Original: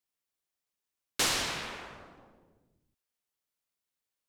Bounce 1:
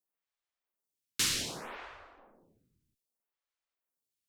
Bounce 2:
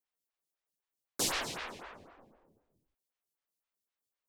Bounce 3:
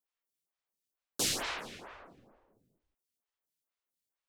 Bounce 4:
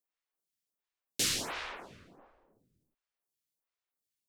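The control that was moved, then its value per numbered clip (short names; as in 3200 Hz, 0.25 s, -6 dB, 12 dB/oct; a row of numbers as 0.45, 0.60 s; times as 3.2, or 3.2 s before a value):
photocell phaser, rate: 0.64, 3.9, 2.2, 1.4 Hz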